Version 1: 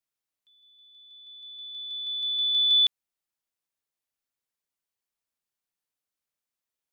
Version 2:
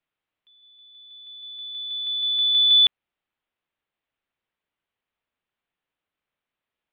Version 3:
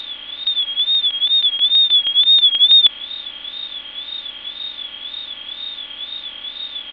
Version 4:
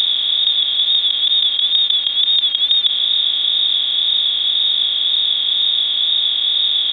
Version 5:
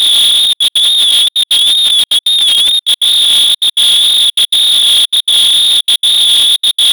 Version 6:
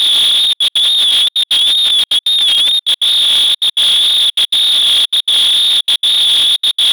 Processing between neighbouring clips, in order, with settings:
steep low-pass 3.4 kHz; trim +8.5 dB
spectral levelling over time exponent 0.2; wow and flutter 110 cents; comb 3.5 ms, depth 98%; trim +1 dB
spectral levelling over time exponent 0.2; trim -7.5 dB
compressor with a negative ratio -18 dBFS, ratio -0.5; waveshaping leveller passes 5; trance gate "xxxxxxx.x." 199 bpm -60 dB
overdrive pedal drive 8 dB, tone 3.1 kHz, clips at -4 dBFS

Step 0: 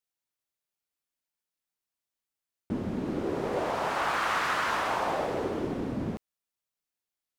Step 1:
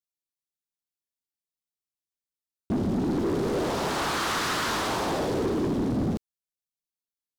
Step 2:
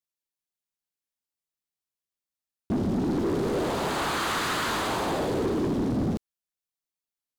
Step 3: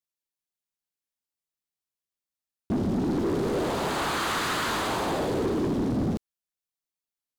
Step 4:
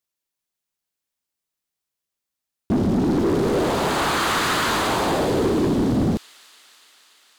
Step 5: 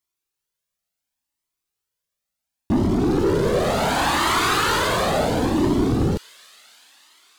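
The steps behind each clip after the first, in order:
high-order bell 1.2 kHz -9.5 dB 2.7 oct; waveshaping leveller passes 3
dynamic bell 5.5 kHz, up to -7 dB, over -53 dBFS, Q 4.8
no audible change
feedback echo behind a high-pass 289 ms, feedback 76%, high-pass 2.8 kHz, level -14.5 dB; trim +6.5 dB
Shepard-style flanger rising 0.7 Hz; trim +5.5 dB

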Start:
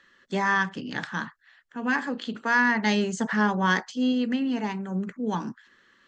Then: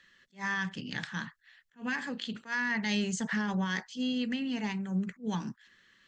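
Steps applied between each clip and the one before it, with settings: peak limiter -18.5 dBFS, peak gain reduction 8 dB; high-order bell 600 Hz -8.5 dB 2.9 oct; attacks held to a fixed rise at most 280 dB/s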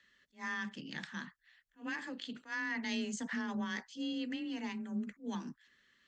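frequency shift +24 Hz; trim -6.5 dB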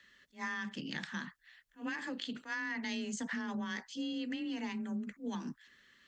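compression, threshold -41 dBFS, peak gain reduction 8 dB; trim +5.5 dB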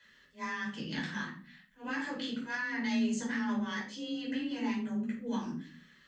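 simulated room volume 370 m³, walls furnished, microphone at 5 m; trim -5 dB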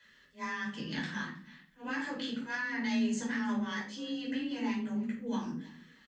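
feedback delay 317 ms, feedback 25%, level -23 dB

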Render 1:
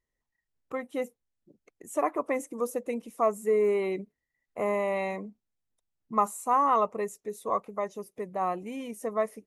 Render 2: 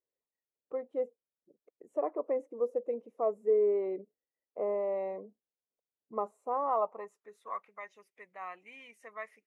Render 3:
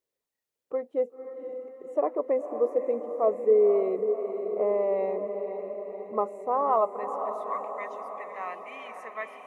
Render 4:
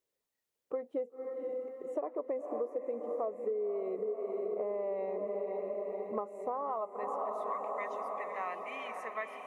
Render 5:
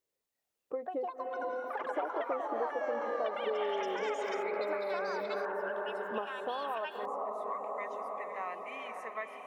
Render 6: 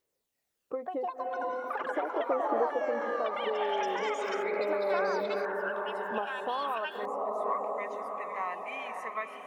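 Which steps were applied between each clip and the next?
band-pass sweep 490 Hz -> 2.1 kHz, 6.49–7.68 s
echo that smears into a reverb 524 ms, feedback 62%, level -8 dB; trim +6 dB
compression 12:1, threshold -32 dBFS, peak gain reduction 16.5 dB
ever faster or slower copies 359 ms, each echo +6 st, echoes 3; trim -1 dB
phaser 0.4 Hz, delay 1.3 ms, feedback 31%; trim +3.5 dB

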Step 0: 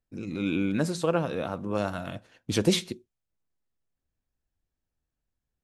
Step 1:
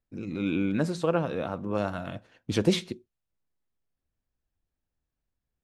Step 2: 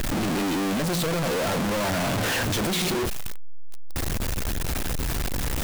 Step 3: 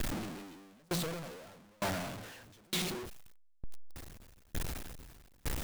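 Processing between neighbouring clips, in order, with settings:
treble shelf 5.5 kHz -10 dB
one-bit comparator; trim +7 dB
sawtooth tremolo in dB decaying 1.1 Hz, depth 35 dB; trim -6 dB

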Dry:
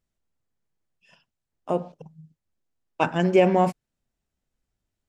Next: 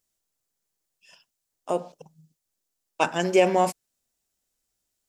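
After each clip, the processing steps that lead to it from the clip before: tone controls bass -10 dB, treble +13 dB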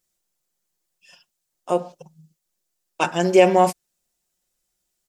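comb 5.6 ms; trim +1.5 dB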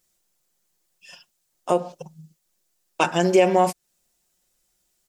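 compression 2:1, threshold -25 dBFS, peak gain reduction 9.5 dB; trim +5.5 dB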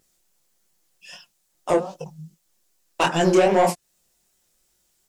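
vibrato 4.4 Hz 39 cents; saturation -13.5 dBFS, distortion -13 dB; chorus 2.5 Hz, delay 18.5 ms, depth 8 ms; trim +6.5 dB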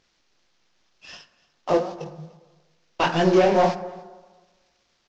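CVSD coder 32 kbps; delay 293 ms -23.5 dB; on a send at -14 dB: reverberation RT60 1.4 s, pre-delay 38 ms

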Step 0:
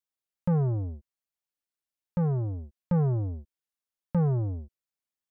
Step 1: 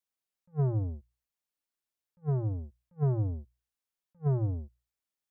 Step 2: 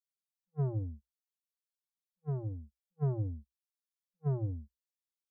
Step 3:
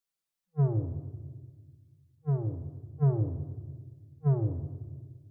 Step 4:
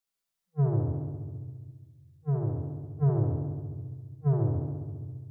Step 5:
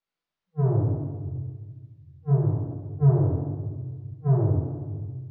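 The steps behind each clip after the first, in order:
hum notches 60/120 Hz; attacks held to a fixed rise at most 500 dB/s
expander on every frequency bin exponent 2; trim -2.5 dB
simulated room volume 1400 m³, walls mixed, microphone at 0.68 m; trim +5 dB
flutter echo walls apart 11.8 m, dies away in 1.3 s
chorus voices 2, 1.1 Hz, delay 20 ms, depth 3 ms; distance through air 210 m; trim +8 dB

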